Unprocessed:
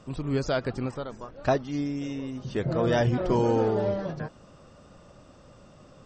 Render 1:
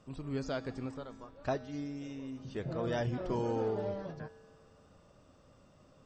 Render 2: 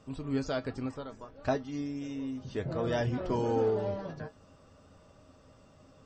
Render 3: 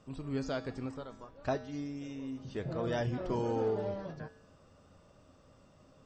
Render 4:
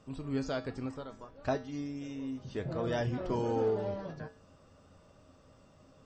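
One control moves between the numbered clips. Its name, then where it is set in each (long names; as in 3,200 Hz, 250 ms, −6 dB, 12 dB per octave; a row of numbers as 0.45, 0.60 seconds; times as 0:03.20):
tuned comb filter, decay: 1.9, 0.15, 0.83, 0.38 seconds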